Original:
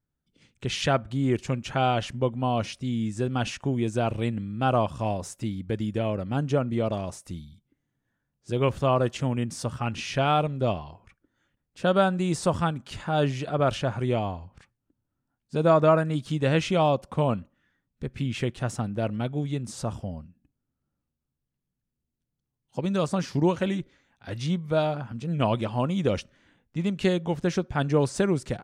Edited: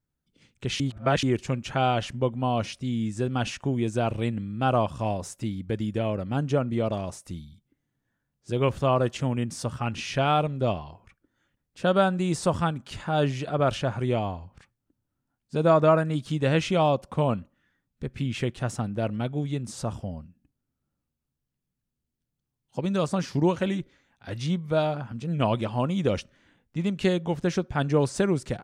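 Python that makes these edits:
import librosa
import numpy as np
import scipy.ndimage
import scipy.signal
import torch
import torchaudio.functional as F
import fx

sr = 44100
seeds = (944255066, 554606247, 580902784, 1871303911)

y = fx.edit(x, sr, fx.reverse_span(start_s=0.8, length_s=0.43), tone=tone)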